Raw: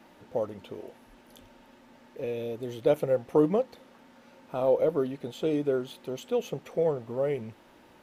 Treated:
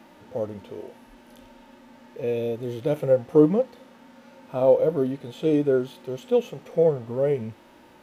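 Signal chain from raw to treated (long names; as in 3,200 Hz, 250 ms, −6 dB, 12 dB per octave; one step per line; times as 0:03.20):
harmonic and percussive parts rebalanced percussive −12 dB
level +7.5 dB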